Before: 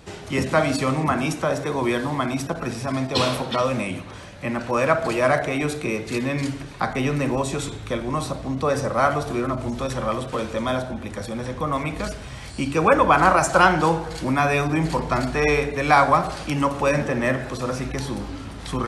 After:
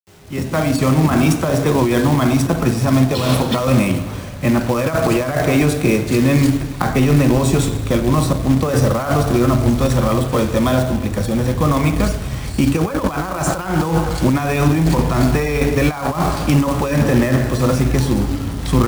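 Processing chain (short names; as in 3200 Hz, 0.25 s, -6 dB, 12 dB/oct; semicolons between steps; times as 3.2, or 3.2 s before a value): opening faded in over 1.28 s; in parallel at -9.5 dB: crossover distortion -39 dBFS; on the sum: high shelf 8900 Hz +6.5 dB; on a send at -13 dB: reverb RT60 2.0 s, pre-delay 5 ms; on the sum: negative-ratio compressor -21 dBFS, ratio -1; companded quantiser 4-bit; low shelf 390 Hz +10.5 dB; bit-crush 8-bit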